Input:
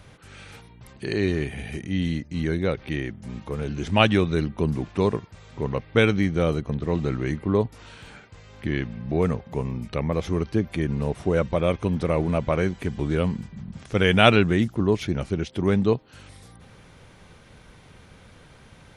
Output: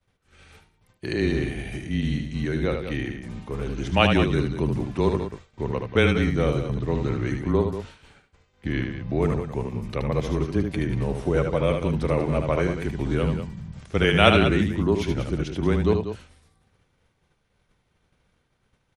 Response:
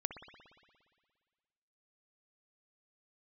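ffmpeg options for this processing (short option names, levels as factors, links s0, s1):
-af "afreqshift=-20,aecho=1:1:75.8|189.5:0.501|0.316,agate=range=0.0224:threshold=0.0178:ratio=3:detection=peak,volume=0.891"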